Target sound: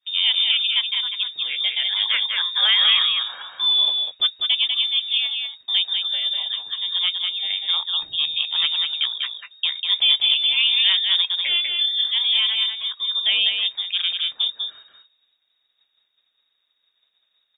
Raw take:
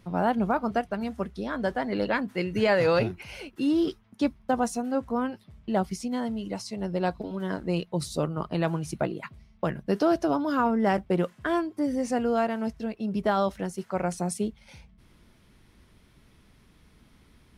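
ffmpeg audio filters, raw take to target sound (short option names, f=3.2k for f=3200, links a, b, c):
-af "agate=range=-33dB:threshold=-45dB:ratio=3:detection=peak,aecho=1:1:196:0.596,lowpass=f=3.2k:t=q:w=0.5098,lowpass=f=3.2k:t=q:w=0.6013,lowpass=f=3.2k:t=q:w=0.9,lowpass=f=3.2k:t=q:w=2.563,afreqshift=-3800,volume=4.5dB"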